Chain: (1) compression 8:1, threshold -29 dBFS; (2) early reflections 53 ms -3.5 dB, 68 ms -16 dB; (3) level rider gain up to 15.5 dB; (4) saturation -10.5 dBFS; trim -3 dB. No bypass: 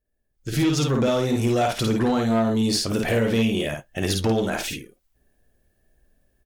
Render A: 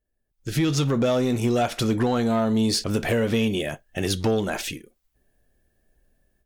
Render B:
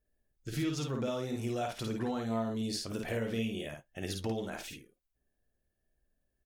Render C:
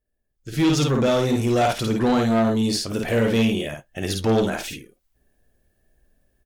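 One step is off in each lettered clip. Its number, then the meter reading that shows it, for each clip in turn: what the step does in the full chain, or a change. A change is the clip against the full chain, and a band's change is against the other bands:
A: 2, loudness change -1.0 LU; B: 3, crest factor change +5.0 dB; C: 1, mean gain reduction 4.5 dB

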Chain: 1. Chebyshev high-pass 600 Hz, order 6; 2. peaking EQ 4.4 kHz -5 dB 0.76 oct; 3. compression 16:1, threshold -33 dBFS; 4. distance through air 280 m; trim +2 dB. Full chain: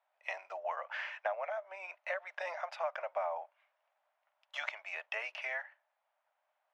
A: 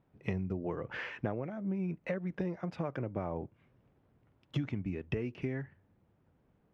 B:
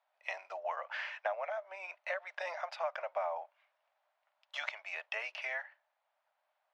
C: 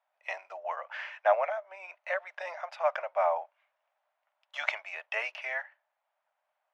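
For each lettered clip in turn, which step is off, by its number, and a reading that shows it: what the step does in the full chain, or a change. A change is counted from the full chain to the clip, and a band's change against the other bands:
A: 1, 500 Hz band +7.0 dB; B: 2, 4 kHz band +2.0 dB; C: 3, mean gain reduction 3.5 dB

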